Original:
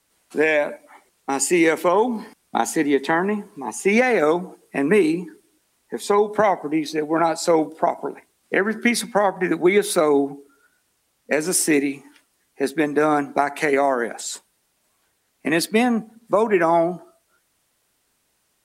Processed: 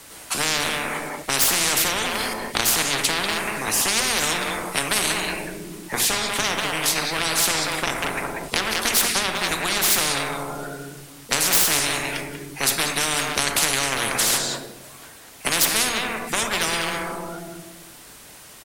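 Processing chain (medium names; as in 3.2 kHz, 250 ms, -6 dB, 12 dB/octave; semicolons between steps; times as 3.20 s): single-diode clipper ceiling -11.5 dBFS; hum notches 60/120/180/240/300/360/420 Hz; speakerphone echo 190 ms, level -10 dB; on a send at -10 dB: reverberation RT60 0.90 s, pre-delay 7 ms; on the sum: spectrum-flattening compressor 10:1; trim +2 dB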